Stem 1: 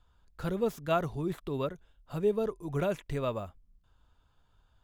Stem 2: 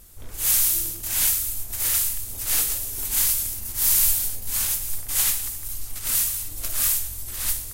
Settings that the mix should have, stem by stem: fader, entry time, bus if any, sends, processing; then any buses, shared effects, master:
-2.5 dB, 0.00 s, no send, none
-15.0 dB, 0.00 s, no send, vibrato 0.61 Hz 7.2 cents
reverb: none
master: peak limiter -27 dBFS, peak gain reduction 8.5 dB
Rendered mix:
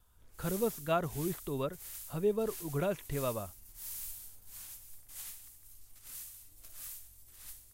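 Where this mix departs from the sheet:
stem 2 -15.0 dB -> -24.0 dB; master: missing peak limiter -27 dBFS, peak gain reduction 8.5 dB

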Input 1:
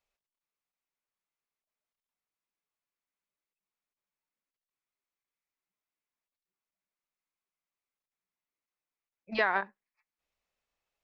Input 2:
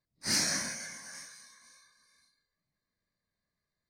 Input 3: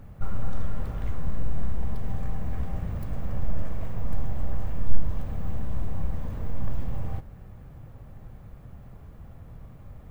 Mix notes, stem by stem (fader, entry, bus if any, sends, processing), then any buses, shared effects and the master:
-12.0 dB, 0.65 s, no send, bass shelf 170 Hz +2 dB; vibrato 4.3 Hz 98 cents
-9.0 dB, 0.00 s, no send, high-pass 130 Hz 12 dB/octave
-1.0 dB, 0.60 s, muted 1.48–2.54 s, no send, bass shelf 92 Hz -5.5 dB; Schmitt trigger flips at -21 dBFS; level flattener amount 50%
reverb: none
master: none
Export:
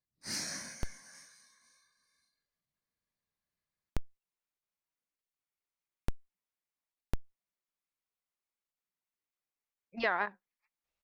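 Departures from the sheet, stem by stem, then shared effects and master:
stem 1 -12.0 dB -> -3.5 dB; stem 2: missing high-pass 130 Hz 12 dB/octave

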